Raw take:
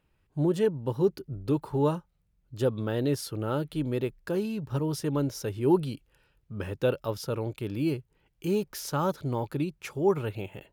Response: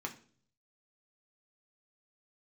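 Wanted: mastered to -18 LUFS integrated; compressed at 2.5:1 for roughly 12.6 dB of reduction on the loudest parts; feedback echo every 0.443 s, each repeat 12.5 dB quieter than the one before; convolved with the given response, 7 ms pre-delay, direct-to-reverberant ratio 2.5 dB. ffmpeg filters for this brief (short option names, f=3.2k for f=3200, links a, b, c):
-filter_complex "[0:a]acompressor=threshold=-38dB:ratio=2.5,aecho=1:1:443|886|1329:0.237|0.0569|0.0137,asplit=2[a][b];[1:a]atrim=start_sample=2205,adelay=7[c];[b][c]afir=irnorm=-1:irlink=0,volume=-3.5dB[d];[a][d]amix=inputs=2:normalize=0,volume=17.5dB"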